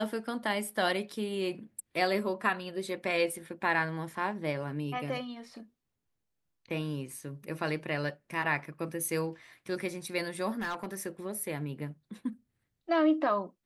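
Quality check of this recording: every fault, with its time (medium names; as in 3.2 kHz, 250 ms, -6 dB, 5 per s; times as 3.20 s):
10.58–11.07 s: clipped -30 dBFS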